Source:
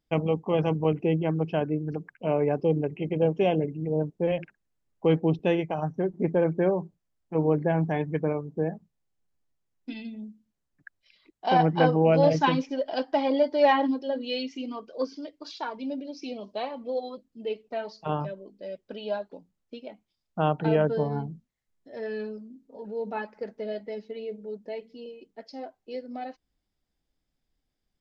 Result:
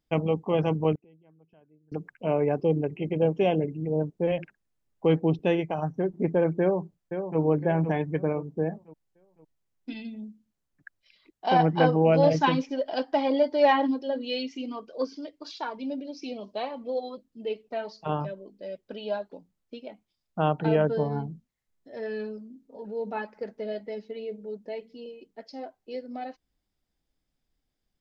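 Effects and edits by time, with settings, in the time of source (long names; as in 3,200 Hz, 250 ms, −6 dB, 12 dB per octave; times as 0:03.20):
0:00.95–0:01.92: gate with flip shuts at −27 dBFS, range −33 dB
0:06.60–0:07.40: delay throw 510 ms, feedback 40%, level −8 dB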